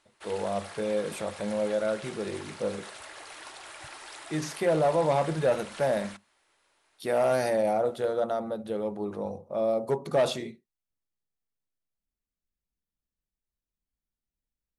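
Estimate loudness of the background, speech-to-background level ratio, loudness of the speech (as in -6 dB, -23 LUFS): -43.5 LUFS, 14.5 dB, -29.0 LUFS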